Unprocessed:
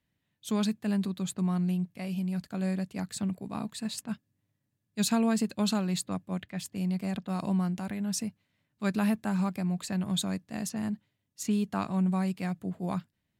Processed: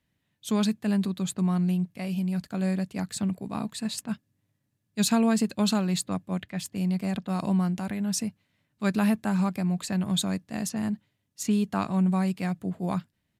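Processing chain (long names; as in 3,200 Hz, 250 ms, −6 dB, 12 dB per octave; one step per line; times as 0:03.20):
downsampling to 32,000 Hz
level +3.5 dB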